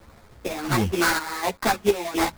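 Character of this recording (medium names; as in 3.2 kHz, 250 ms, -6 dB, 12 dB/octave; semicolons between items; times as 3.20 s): a quantiser's noise floor 8-bit, dither none; chopped level 1.4 Hz, depth 60%, duty 65%; aliases and images of a low sample rate 3 kHz, jitter 20%; a shimmering, thickened sound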